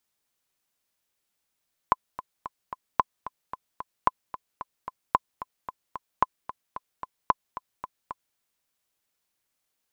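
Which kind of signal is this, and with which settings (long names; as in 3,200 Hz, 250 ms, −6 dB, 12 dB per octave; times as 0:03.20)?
click track 223 BPM, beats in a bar 4, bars 6, 1,020 Hz, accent 15 dB −5.5 dBFS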